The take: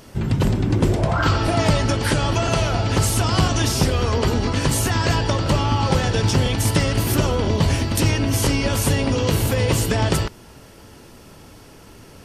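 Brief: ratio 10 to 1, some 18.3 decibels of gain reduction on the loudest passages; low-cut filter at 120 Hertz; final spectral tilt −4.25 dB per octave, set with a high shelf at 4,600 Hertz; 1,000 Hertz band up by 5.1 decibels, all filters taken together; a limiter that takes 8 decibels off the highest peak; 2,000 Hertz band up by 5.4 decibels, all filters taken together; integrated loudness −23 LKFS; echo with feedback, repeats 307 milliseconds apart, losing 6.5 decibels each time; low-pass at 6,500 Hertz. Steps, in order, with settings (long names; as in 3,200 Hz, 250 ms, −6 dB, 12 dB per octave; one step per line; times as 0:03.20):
high-pass filter 120 Hz
low-pass filter 6,500 Hz
parametric band 1,000 Hz +5 dB
parametric band 2,000 Hz +4.5 dB
high-shelf EQ 4,600 Hz +4.5 dB
downward compressor 10 to 1, threshold −33 dBFS
brickwall limiter −29 dBFS
repeating echo 307 ms, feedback 47%, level −6.5 dB
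level +14.5 dB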